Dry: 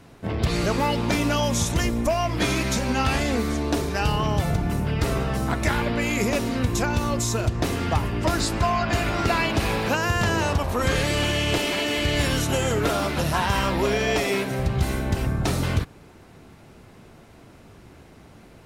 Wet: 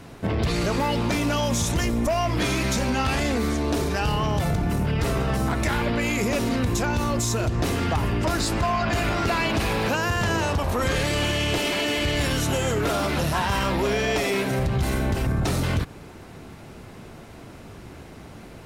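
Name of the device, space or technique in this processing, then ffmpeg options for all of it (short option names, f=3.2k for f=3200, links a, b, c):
soft clipper into limiter: -af "asoftclip=type=tanh:threshold=-16dB,alimiter=limit=-23dB:level=0:latency=1:release=88,volume=6dB"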